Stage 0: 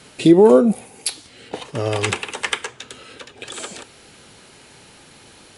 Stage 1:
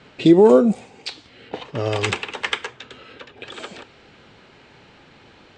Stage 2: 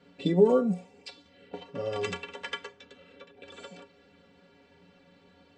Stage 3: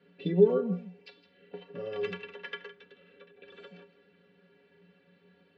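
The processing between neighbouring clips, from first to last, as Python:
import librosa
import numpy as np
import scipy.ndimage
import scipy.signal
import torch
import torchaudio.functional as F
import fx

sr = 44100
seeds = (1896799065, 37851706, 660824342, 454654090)

y1 = scipy.signal.sosfilt(scipy.signal.ellip(4, 1.0, 40, 8200.0, 'lowpass', fs=sr, output='sos'), x)
y1 = fx.env_lowpass(y1, sr, base_hz=2800.0, full_db=-12.0)
y2 = fx.stiff_resonator(y1, sr, f0_hz=84.0, decay_s=0.3, stiffness=0.03)
y2 = fx.small_body(y2, sr, hz=(220.0, 490.0), ring_ms=35, db=11)
y2 = y2 * 10.0 ** (-4.5 / 20.0)
y3 = fx.cabinet(y2, sr, low_hz=120.0, low_slope=12, high_hz=4400.0, hz=(180.0, 270.0, 400.0, 850.0, 1700.0, 2700.0), db=(9, -4, 9, -4, 7, 4))
y3 = y3 + 10.0 ** (-15.0 / 20.0) * np.pad(y3, (int(162 * sr / 1000.0), 0))[:len(y3)]
y3 = y3 * 10.0 ** (-8.0 / 20.0)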